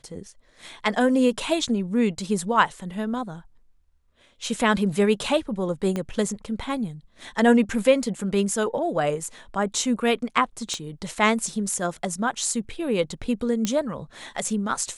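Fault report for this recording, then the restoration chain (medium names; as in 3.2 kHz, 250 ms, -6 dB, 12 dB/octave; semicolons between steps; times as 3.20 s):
5.96 s: pop -15 dBFS
10.74 s: pop -18 dBFS
13.65 s: pop -10 dBFS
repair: de-click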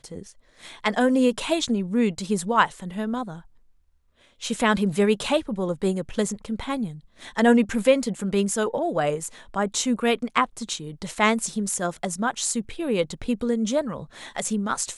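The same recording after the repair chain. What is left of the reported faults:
5.96 s: pop
10.74 s: pop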